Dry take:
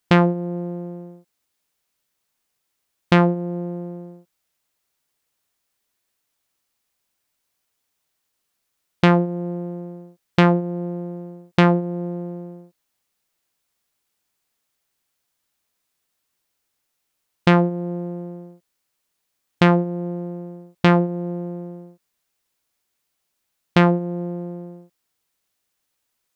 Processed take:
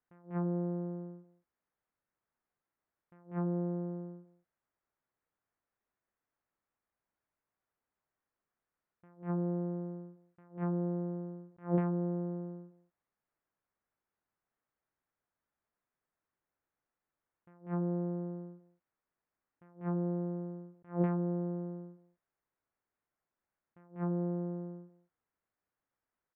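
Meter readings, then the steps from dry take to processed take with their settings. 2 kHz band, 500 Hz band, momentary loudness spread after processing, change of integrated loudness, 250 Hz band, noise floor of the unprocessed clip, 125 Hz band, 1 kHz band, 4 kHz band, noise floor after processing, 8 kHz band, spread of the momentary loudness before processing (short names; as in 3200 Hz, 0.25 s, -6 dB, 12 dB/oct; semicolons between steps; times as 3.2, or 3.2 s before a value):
-31.5 dB, -16.0 dB, 15 LU, -15.5 dB, -14.5 dB, -76 dBFS, -14.5 dB, -22.0 dB, under -40 dB, under -85 dBFS, n/a, 19 LU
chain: LPF 1800 Hz 24 dB/oct; on a send: echo 0.194 s -18 dB; on the sum: attack slew limiter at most 220 dB/s; gain -7 dB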